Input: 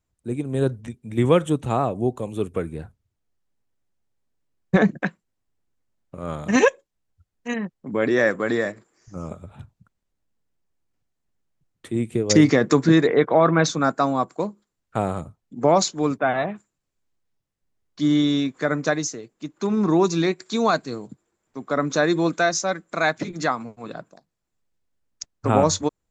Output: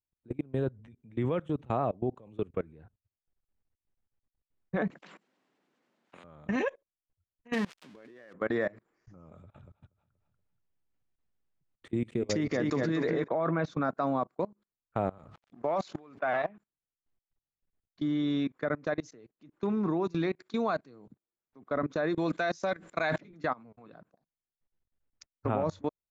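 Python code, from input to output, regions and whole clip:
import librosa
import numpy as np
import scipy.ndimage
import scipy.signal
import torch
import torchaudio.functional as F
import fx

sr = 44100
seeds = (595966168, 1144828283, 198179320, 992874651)

y = fx.chain(x, sr, fx.highpass(hz=210.0, slope=24),
    fx.high_shelf(hz=5700.0, db=6.0),
    fx.spectral_comp(ratio=4.0), at=(4.9, 6.24))
y = fx.chain(y, sr, fx.crossing_spikes(level_db=-15.0),
    fx.low_shelf(hz=120.0, db=-6.5),
    fx.over_compress(threshold_db=-25.0, ratio=-0.5), at=(7.53, 8.33))
y = fx.chain(y, sr, fx.high_shelf(hz=5000.0, db=11.0),
    fx.echo_feedback(ms=238, feedback_pct=30, wet_db=-8.0), at=(9.32, 13.28))
y = fx.chain(y, sr, fx.law_mismatch(coded='A'),
    fx.low_shelf(hz=380.0, db=-12.0),
    fx.sustainer(db_per_s=26.0), at=(15.18, 16.49))
y = fx.chain(y, sr, fx.high_shelf(hz=3100.0, db=11.0),
    fx.notch(hz=1300.0, q=15.0),
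    fx.sustainer(db_per_s=80.0), at=(22.16, 23.18))
y = scipy.signal.sosfilt(scipy.signal.butter(2, 2900.0, 'lowpass', fs=sr, output='sos'), y)
y = fx.dynamic_eq(y, sr, hz=610.0, q=5.4, threshold_db=-33.0, ratio=4.0, max_db=4)
y = fx.level_steps(y, sr, step_db=24)
y = y * 10.0 ** (-4.5 / 20.0)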